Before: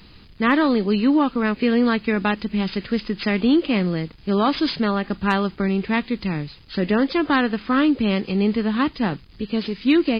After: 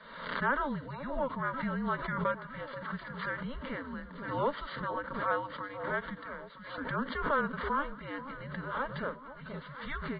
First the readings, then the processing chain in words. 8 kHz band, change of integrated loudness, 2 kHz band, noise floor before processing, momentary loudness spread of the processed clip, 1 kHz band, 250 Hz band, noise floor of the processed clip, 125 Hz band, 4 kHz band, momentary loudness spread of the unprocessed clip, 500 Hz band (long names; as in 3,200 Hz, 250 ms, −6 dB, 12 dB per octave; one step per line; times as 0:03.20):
can't be measured, −14.5 dB, −9.0 dB, −47 dBFS, 11 LU, −8.0 dB, −21.0 dB, −48 dBFS, −13.0 dB, −18.5 dB, 7 LU, −13.0 dB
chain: single-sideband voice off tune −280 Hz 530–3,300 Hz
phaser with its sweep stopped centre 510 Hz, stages 8
delay that swaps between a low-pass and a high-pass 482 ms, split 990 Hz, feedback 65%, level −11.5 dB
background raised ahead of every attack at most 58 dB per second
level −5.5 dB